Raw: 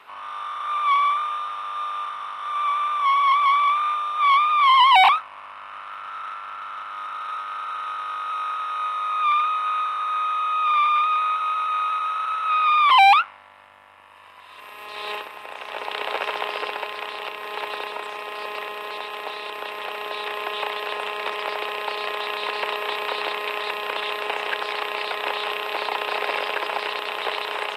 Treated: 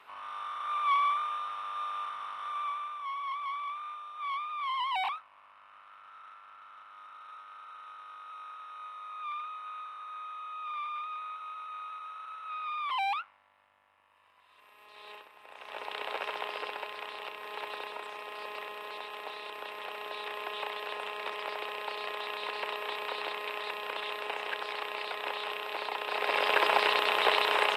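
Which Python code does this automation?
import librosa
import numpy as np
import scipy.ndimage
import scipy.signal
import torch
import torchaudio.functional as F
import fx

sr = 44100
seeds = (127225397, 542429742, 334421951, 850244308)

y = fx.gain(x, sr, db=fx.line((2.41, -7.5), (3.06, -18.0), (15.34, -18.0), (15.75, -9.5), (26.03, -9.5), (26.59, 1.0)))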